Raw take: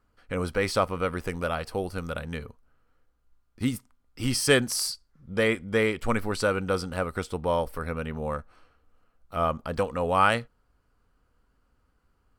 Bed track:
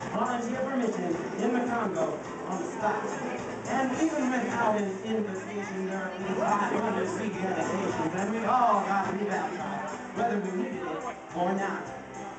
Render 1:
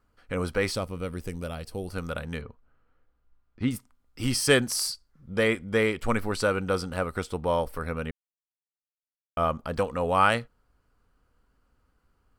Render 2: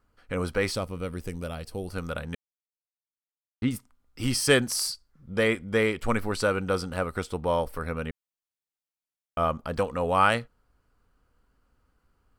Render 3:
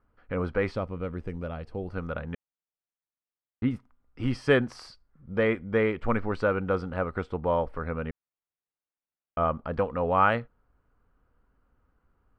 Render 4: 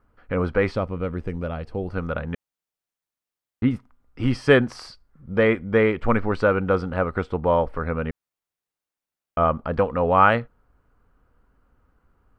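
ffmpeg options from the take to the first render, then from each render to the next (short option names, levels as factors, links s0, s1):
-filter_complex "[0:a]asettb=1/sr,asplit=3[s0][s1][s2];[s0]atrim=end=0.754[s3];[s1]atrim=start=0.75:end=1.88,asetpts=PTS-STARTPTS,afade=t=in:d=0.004:c=qsin,afade=t=out:st=1.126:d=0.004:c=qsin,equalizer=f=1200:t=o:w=2.6:g=-12[s4];[s2]atrim=start=1.876[s5];[s3][s4]acrossfade=d=0.004:c1=hsin:c2=qsin[s6];[s6][s5]acrossfade=d=0.004:c1=qsin:c2=hsin,asettb=1/sr,asplit=3[s7][s8][s9];[s7]atrim=end=2.414[s10];[s8]atrim=start=2.41:end=3.71,asetpts=PTS-STARTPTS,afade=t=in:d=0.004:c=qsin,afade=t=out:st=1.296:d=0.004:c=qsin,lowpass=3200[s11];[s9]atrim=start=3.706[s12];[s10][s11]acrossfade=d=0.004:c1=hsin:c2=qsin[s13];[s13][s12]acrossfade=d=0.004:c1=qsin:c2=hsin,asplit=3[s14][s15][s16];[s14]atrim=end=8.11,asetpts=PTS-STARTPTS,afade=t=out:st=8.106:d=0.004:c=hsin[s17];[s15]atrim=start=8.11:end=9.37,asetpts=PTS-STARTPTS,volume=0[s18];[s16]atrim=start=9.37,asetpts=PTS-STARTPTS,afade=t=in:d=0.004:c=hsin[s19];[s17][s18][s19]concat=n=3:v=0:a=1"
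-filter_complex "[0:a]asplit=3[s0][s1][s2];[s0]atrim=end=2.35,asetpts=PTS-STARTPTS,afade=t=out:st=2.346:d=0.004:c=hsin[s3];[s1]atrim=start=2.35:end=3.62,asetpts=PTS-STARTPTS,volume=0[s4];[s2]atrim=start=3.62,asetpts=PTS-STARTPTS,afade=t=in:d=0.004:c=hsin[s5];[s3][s4][s5]concat=n=3:v=0:a=1"
-af "lowpass=1900"
-af "volume=2"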